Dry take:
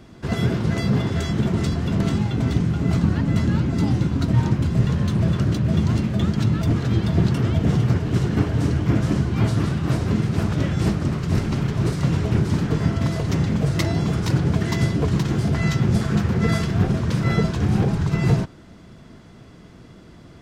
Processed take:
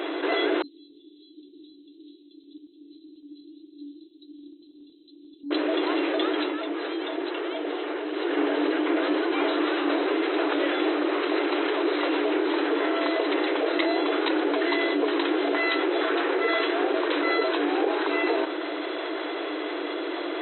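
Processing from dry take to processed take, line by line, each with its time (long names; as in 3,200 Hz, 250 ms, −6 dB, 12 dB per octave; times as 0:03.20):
0:00.62–0:05.51: Chebyshev band-stop filter 140–7,900 Hz, order 5
0:06.30–0:08.43: duck −19 dB, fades 0.27 s
whole clip: brick-wall band-pass 280–4,100 Hz; parametric band 1,200 Hz −2 dB; envelope flattener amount 70%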